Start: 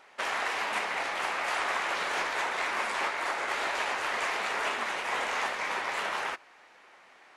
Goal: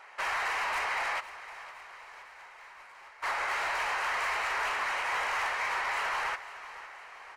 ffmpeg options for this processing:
-filter_complex "[0:a]asoftclip=type=tanh:threshold=-33dB,equalizer=f=125:t=o:w=1:g=-8,equalizer=f=250:t=o:w=1:g=-11,equalizer=f=1k:t=o:w=1:g=6,equalizer=f=2k:t=o:w=1:g=5,asplit=3[a][b][c];[a]afade=t=out:st=1.19:d=0.02[d];[b]agate=range=-33dB:threshold=-18dB:ratio=3:detection=peak,afade=t=in:st=1.19:d=0.02,afade=t=out:st=3.22:d=0.02[e];[c]afade=t=in:st=3.22:d=0.02[f];[d][e][f]amix=inputs=3:normalize=0,lowshelf=f=200:g=4,bandreject=f=3.5k:w=12,aecho=1:1:511|1022|1533|2044|2555|3066:0.168|0.0957|0.0545|0.0311|0.0177|0.0101"

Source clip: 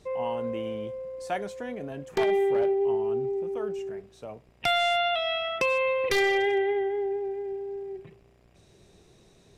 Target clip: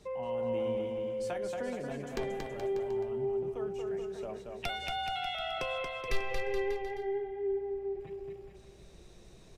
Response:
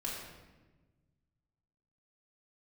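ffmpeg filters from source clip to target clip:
-filter_complex "[0:a]asettb=1/sr,asplit=3[a][b][c];[a]atrim=end=4.694[d];[b]atrim=start=4.69:end=5.35,asetpts=PTS-STARTPTS,afade=t=in:d=0.004:c=qsin,afade=t=out:st=0.656:d=0.004:c=qsin,afreqshift=74[e];[c]atrim=start=5.346[f];[d][e]acrossfade=d=0.004:c1=hsin:c2=qsin[g];[g][f]acrossfade=d=0.004:c1=qsin:c2=hsin,asettb=1/sr,asplit=3[h][i][j];[h]atrim=end=6.174[k];[i]atrim=start=6.17:end=8,asetpts=PTS-STARTPTS,afade=t=in:d=0.004:c=qsin,afade=t=out:st=1.826:d=0.004:c=qsin,lowpass=f=1.8k:p=1[l];[j]atrim=start=7.996[m];[k][l]acrossfade=d=0.004:c1=hsin:c2=qsin[n];[n][m]acrossfade=d=0.004:c1=qsin:c2=hsin,acrossover=split=190[o][p];[o]asubboost=boost=3.5:cutoff=72[q];[p]acompressor=threshold=-34dB:ratio=6[r];[q][r]amix=inputs=2:normalize=0,flanger=delay=4.8:depth=4.6:regen=-59:speed=0.23:shape=triangular,asplit=2[s][t];[t]aecho=0:1:230|425.5|591.7|732.9|853:0.631|0.398|0.251|0.158|0.1[u];[s][u]amix=inputs=2:normalize=0,volume=2.5dB"

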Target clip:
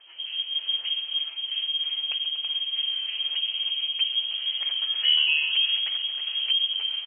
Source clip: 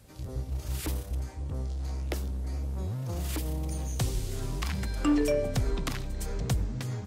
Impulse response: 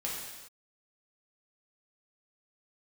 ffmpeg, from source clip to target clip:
-filter_complex "[0:a]aecho=1:1:136|239|325:0.178|0.141|0.266,asplit=2[a][b];[b]asetrate=55563,aresample=44100,atempo=0.793701,volume=0dB[c];[a][c]amix=inputs=2:normalize=0,acrossover=split=650|1100[d][e][f];[f]acompressor=threshold=-48dB:ratio=6[g];[d][e][g]amix=inputs=3:normalize=0,lowpass=f=2.8k:t=q:w=0.5098,lowpass=f=2.8k:t=q:w=0.6013,lowpass=f=2.8k:t=q:w=0.9,lowpass=f=2.8k:t=q:w=2.563,afreqshift=-3300,lowshelf=f=310:t=q:w=1.5:g=-7"

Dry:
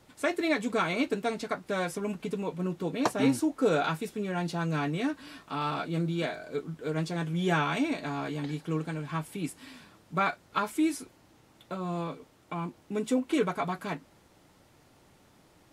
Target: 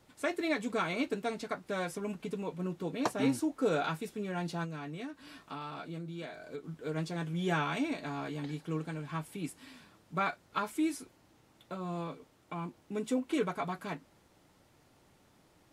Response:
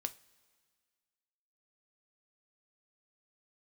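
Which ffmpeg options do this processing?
-filter_complex "[0:a]asettb=1/sr,asplit=3[a][b][c];[a]atrim=end=4.644[d];[b]atrim=start=4.64:end=6.64,asetpts=PTS-STARTPTS,afade=t=in:d=0.004:c=qsin,afade=t=out:st=1.996:d=0.004:c=qsin,acompressor=threshold=-34dB:ratio=6[e];[c]atrim=start=6.636[f];[d][e]acrossfade=d=0.004:c1=hsin:c2=qsin[g];[g][f]acrossfade=d=0.004:c1=qsin:c2=hsin,volume=-4.5dB"

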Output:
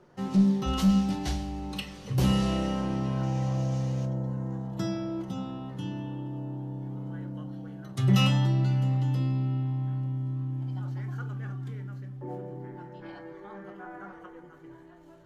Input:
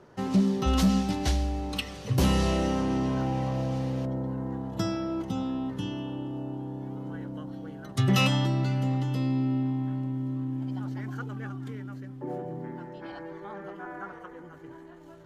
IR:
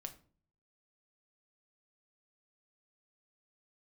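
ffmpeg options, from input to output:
-filter_complex "[0:a]asettb=1/sr,asplit=3[a][b][c];[a]atrim=end=3.234[d];[b]atrim=start=3.23:end=4.67,asetpts=PTS-STARTPTS,afade=t=in:d=0.004:c=qsin,afade=t=out:st=1.436:d=0.004:c=qsin,equalizer=f=6.5k:w=2.1:g=11[e];[c]atrim=start=4.666[f];[d][e]acrossfade=d=0.004:c1=hsin:c2=qsin[g];[g][f]acrossfade=d=0.004:c1=qsin:c2=hsin[h];[1:a]atrim=start_sample=2205[i];[h][i]afir=irnorm=-1:irlink=0"

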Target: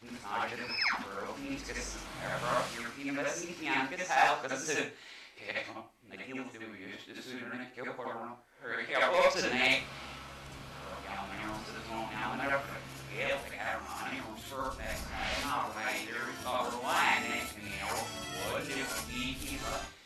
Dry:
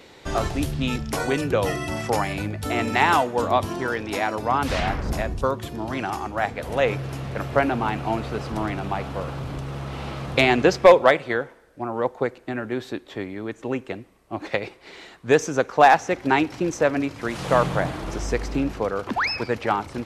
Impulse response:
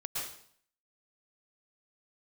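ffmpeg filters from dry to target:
-filter_complex "[0:a]areverse,tiltshelf=f=1.1k:g=-6.5[a];[1:a]atrim=start_sample=2205,asetrate=83790,aresample=44100[b];[a][b]afir=irnorm=-1:irlink=0,volume=-7dB"

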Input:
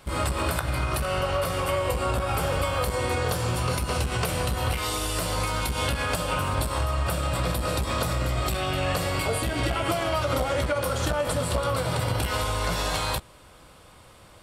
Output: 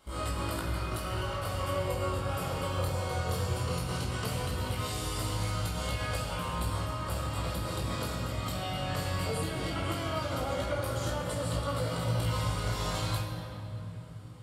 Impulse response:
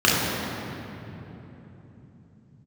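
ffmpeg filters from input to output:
-filter_complex "[0:a]flanger=delay=17.5:depth=5.3:speed=0.17,asplit=2[a][b];[1:a]atrim=start_sample=2205,highshelf=f=3.2k:g=10.5[c];[b][c]afir=irnorm=-1:irlink=0,volume=-24dB[d];[a][d]amix=inputs=2:normalize=0,volume=-8dB"

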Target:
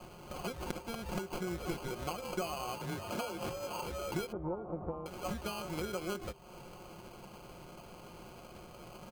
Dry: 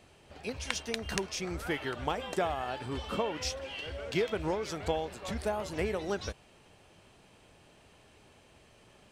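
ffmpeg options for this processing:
-filter_complex "[0:a]acrusher=samples=24:mix=1:aa=0.000001,asettb=1/sr,asplit=3[a][b][c];[a]atrim=end=2.794[d];[b]atrim=start=2.79:end=3.8,asetpts=PTS-STARTPTS,afade=t=in:d=0.004:c=qsin,afade=t=out:st=1.006:d=0.004:c=qsin,afreqshift=28[e];[c]atrim=start=3.796[f];[d][e]acrossfade=d=0.004:c1=hsin:c2=qsin[g];[g][f]acrossfade=d=0.004:c1=qsin:c2=hsin,asettb=1/sr,asplit=3[h][i][j];[h]atrim=end=4.324[k];[i]atrim=start=4.32:end=5.06,asetpts=PTS-STARTPTS,afade=t=in:d=0.004:c=qsin,afade=t=out:st=0.736:d=0.004:c=qsin,lowpass=f=1k:w=0.5412,lowpass=f=1k:w=1.3066[l];[j]atrim=start=5.056[m];[k][l]acrossfade=d=0.004:c1=hsin:c2=qsin[n];[n][m]acrossfade=d=0.004:c1=qsin:c2=hsin,acompressor=threshold=-47dB:ratio=4,aecho=1:1:5.6:0.51,bandreject=f=395:t=h:w=4,bandreject=f=790:t=h:w=4,bandreject=f=1.185k:t=h:w=4,bandreject=f=1.58k:t=h:w=4,bandreject=f=1.975k:t=h:w=4,bandreject=f=2.37k:t=h:w=4,bandreject=f=2.765k:t=h:w=4,bandreject=f=3.16k:t=h:w=4,volume=8dB"

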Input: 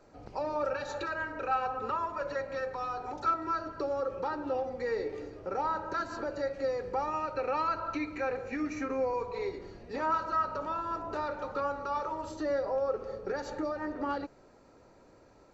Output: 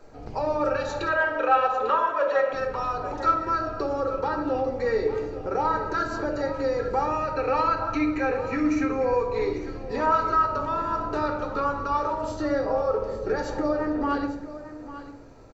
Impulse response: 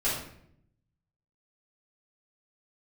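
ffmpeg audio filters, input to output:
-filter_complex "[0:a]asettb=1/sr,asplit=3[a][b][c];[a]atrim=end=1.084[d];[b]atrim=start=1.08:end=2.53,asetpts=PTS-STARTPTS,afade=t=in:d=0.004:c=qsin,afade=t=out:st=1.446:d=0.004:c=qsin,highpass=380,equalizer=f=550:t=q:w=4:g=9,equalizer=f=1.1k:t=q:w=4:g=6,equalizer=f=1.8k:t=q:w=4:g=4,equalizer=f=3.3k:t=q:w=4:g=10,equalizer=f=4.8k:t=q:w=4:g=-8,lowpass=f=6.7k:w=0.5412,lowpass=f=6.7k:w=1.3066[e];[c]atrim=start=2.526[f];[d][e]acrossfade=d=0.004:c1=hsin:c2=qsin[g];[g][f]acrossfade=d=0.004:c1=qsin:c2=hsin,aecho=1:1:848:0.2,asplit=2[h][i];[1:a]atrim=start_sample=2205,lowshelf=f=290:g=7.5[j];[i][j]afir=irnorm=-1:irlink=0,volume=-13.5dB[k];[h][k]amix=inputs=2:normalize=0,volume=4.5dB"

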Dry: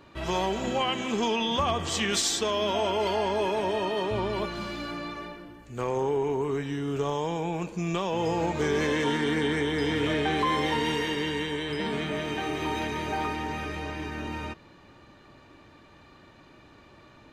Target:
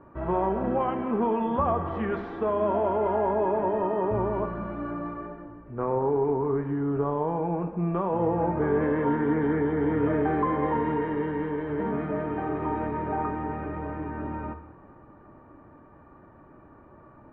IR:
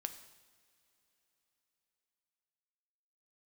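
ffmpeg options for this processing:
-filter_complex "[0:a]lowpass=f=1.4k:w=0.5412,lowpass=f=1.4k:w=1.3066[a];[1:a]atrim=start_sample=2205[b];[a][b]afir=irnorm=-1:irlink=0,volume=4.5dB"

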